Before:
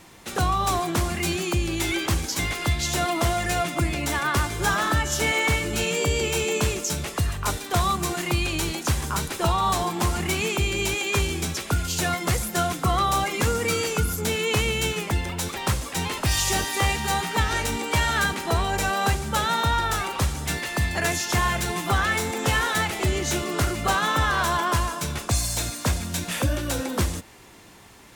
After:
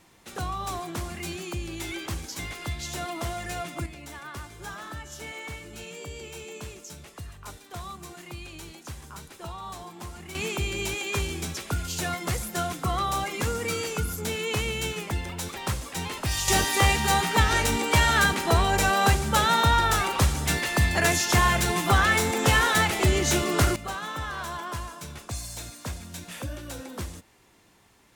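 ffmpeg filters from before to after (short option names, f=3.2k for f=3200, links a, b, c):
-af "asetnsamples=n=441:p=0,asendcmd='3.86 volume volume -16dB;10.35 volume volume -5dB;16.48 volume volume 2dB;23.76 volume volume -11dB',volume=-9dB"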